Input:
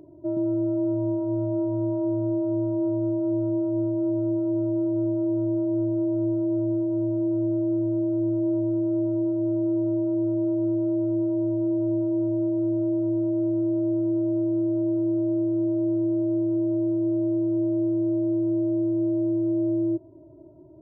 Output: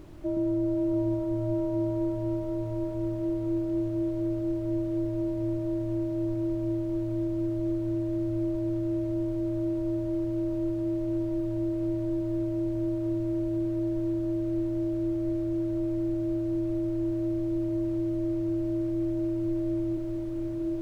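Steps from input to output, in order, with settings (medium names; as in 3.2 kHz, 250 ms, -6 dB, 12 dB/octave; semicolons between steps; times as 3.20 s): added noise brown -42 dBFS; echo that smears into a reverb 798 ms, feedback 65%, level -4 dB; trim -2.5 dB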